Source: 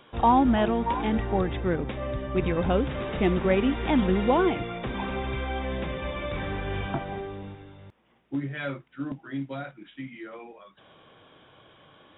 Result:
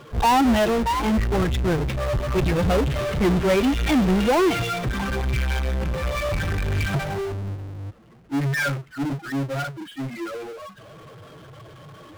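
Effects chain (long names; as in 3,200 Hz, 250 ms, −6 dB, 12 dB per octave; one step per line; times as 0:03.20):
spectral dynamics exaggerated over time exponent 2
low-pass that shuts in the quiet parts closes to 630 Hz, open at −27 dBFS
power curve on the samples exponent 0.35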